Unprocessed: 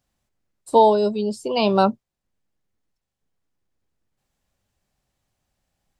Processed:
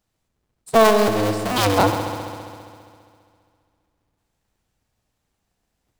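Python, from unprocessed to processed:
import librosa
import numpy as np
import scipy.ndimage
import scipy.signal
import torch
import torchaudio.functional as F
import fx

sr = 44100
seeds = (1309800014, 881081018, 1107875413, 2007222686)

y = fx.cycle_switch(x, sr, every=2, mode='inverted')
y = fx.echo_heads(y, sr, ms=67, heads='first and second', feedback_pct=73, wet_db=-13.0)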